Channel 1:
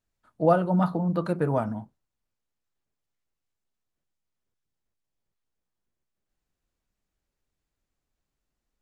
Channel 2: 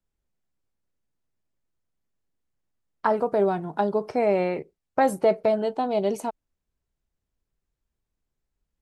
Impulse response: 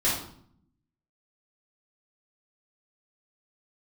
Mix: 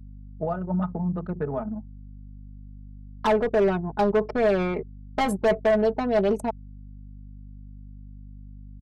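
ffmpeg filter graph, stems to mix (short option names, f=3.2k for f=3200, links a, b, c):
-filter_complex "[0:a]acompressor=threshold=-23dB:ratio=6,volume=-2dB[a];[1:a]volume=22dB,asoftclip=hard,volume=-22dB,adelay=200,volume=1.5dB[b];[a][b]amix=inputs=2:normalize=0,aecho=1:1:4.7:0.65,anlmdn=25.1,aeval=exprs='val(0)+0.00891*(sin(2*PI*50*n/s)+sin(2*PI*2*50*n/s)/2+sin(2*PI*3*50*n/s)/3+sin(2*PI*4*50*n/s)/4+sin(2*PI*5*50*n/s)/5)':c=same"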